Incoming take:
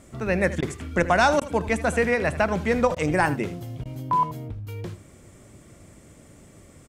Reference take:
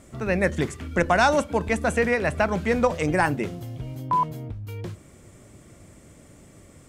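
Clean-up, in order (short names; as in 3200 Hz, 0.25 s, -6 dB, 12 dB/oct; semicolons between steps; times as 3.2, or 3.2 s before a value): interpolate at 0.61/1.4/2.95/3.84, 13 ms; inverse comb 80 ms -15.5 dB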